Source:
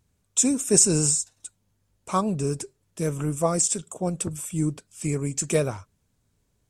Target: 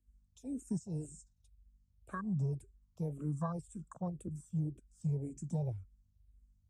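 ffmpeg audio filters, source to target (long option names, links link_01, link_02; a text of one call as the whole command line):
ffmpeg -i in.wav -filter_complex "[0:a]asettb=1/sr,asplit=3[link_01][link_02][link_03];[link_01]atrim=end=2.134[link_04];[link_02]atrim=start=2.13:end=4.21,asetpts=PTS-STARTPTS,afade=type=in:duration=0.004:curve=qsin,afade=type=out:start_time=2.076:duration=0.004:curve=qsin,equalizer=frequency=1100:width=2.6:gain=13[link_05];[link_03]atrim=start=4.206[link_06];[link_04][link_05]acrossfade=duration=0.004:curve1=hsin:curve2=qsin[link_07];[link_07][link_06]acrossfade=duration=0.004:curve1=qsin:curve2=hsin,highpass=97,bass=frequency=250:gain=6,treble=frequency=4000:gain=6,acompressor=threshold=-18dB:ratio=6,aeval=exprs='val(0)+0.00251*(sin(2*PI*50*n/s)+sin(2*PI*2*50*n/s)/2+sin(2*PI*3*50*n/s)/3+sin(2*PI*4*50*n/s)/4+sin(2*PI*5*50*n/s)/5)':channel_layout=same,acrossover=split=190[link_08][link_09];[link_09]acompressor=threshold=-48dB:ratio=1.5[link_10];[link_08][link_10]amix=inputs=2:normalize=0,afwtdn=0.0224,asplit=2[link_11][link_12];[link_12]afreqshift=-1.9[link_13];[link_11][link_13]amix=inputs=2:normalize=1,volume=-5.5dB" out.wav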